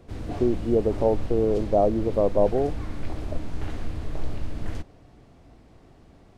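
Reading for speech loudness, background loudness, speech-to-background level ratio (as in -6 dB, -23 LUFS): -24.0 LUFS, -35.5 LUFS, 11.5 dB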